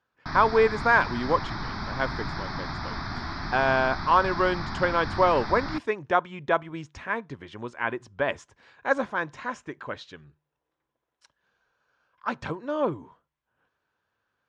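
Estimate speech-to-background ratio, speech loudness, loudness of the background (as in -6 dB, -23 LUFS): 8.0 dB, -26.0 LUFS, -34.0 LUFS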